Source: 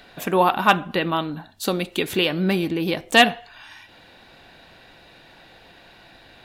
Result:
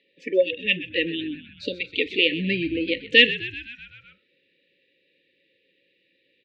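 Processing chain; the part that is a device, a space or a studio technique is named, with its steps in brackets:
high-pass filter 150 Hz 24 dB per octave
noise reduction from a noise print of the clip's start 17 dB
brick-wall band-stop 580–1,700 Hz
0:00.52–0:00.96: flat-topped bell 5,400 Hz −10 dB 1 octave
frequency-shifting delay pedal into a guitar cabinet (echo with shifted repeats 127 ms, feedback 64%, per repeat −59 Hz, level −15 dB; loudspeaker in its box 89–3,600 Hz, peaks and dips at 140 Hz −10 dB, 220 Hz −9 dB, 540 Hz +3 dB, 1,600 Hz −6 dB, 2,600 Hz +4 dB)
level +1.5 dB

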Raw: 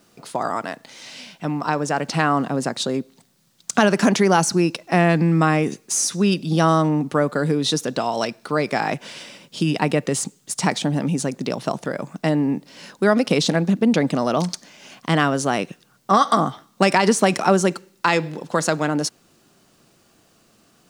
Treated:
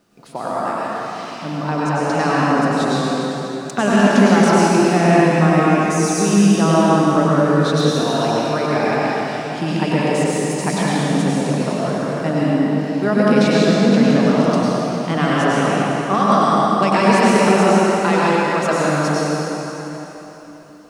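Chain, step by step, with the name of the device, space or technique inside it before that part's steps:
swimming-pool hall (convolution reverb RT60 3.7 s, pre-delay 92 ms, DRR −7.5 dB; high-shelf EQ 3,300 Hz −7 dB)
level −3 dB

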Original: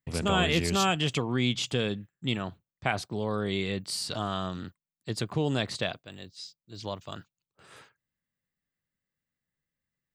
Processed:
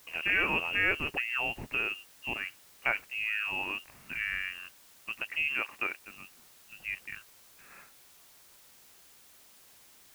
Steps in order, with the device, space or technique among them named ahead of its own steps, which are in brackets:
scrambled radio voice (band-pass filter 320–2,800 Hz; voice inversion scrambler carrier 3,000 Hz; white noise bed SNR 22 dB)
0:05.42–0:05.98: low-shelf EQ 160 Hz −11.5 dB

